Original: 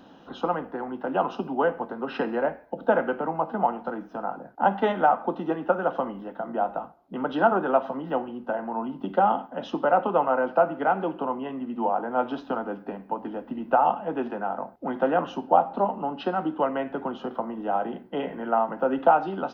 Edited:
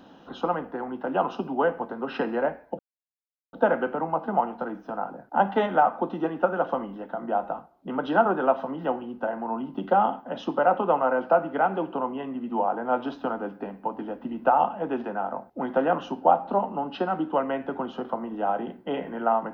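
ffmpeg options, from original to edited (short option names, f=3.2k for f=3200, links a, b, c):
-filter_complex "[0:a]asplit=2[a][b];[a]atrim=end=2.79,asetpts=PTS-STARTPTS,afade=t=out:st=2.786:d=0.004:c=hsin,apad=pad_dur=0.74[c];[b]atrim=start=2.79,asetpts=PTS-STARTPTS,afade=t=in:d=0.004:c=hsin[d];[c][d]concat=n=2:v=0:a=1"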